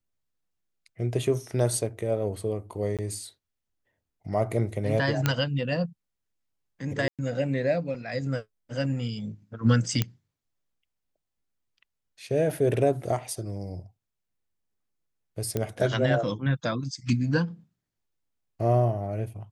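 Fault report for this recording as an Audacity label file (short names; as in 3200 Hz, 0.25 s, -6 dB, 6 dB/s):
2.970000	2.990000	gap 17 ms
5.260000	5.260000	pop -8 dBFS
7.080000	7.190000	gap 0.107 s
10.020000	10.020000	pop -10 dBFS
15.570000	15.570000	pop -14 dBFS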